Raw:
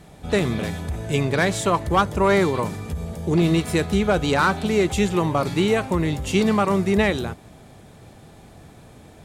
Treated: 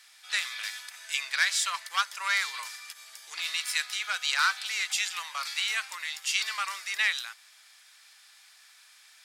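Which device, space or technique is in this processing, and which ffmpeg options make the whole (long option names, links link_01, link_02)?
headphones lying on a table: -af "highpass=frequency=1500:width=0.5412,highpass=frequency=1500:width=1.3066,equalizer=frequency=5000:width_type=o:width=0.46:gain=8"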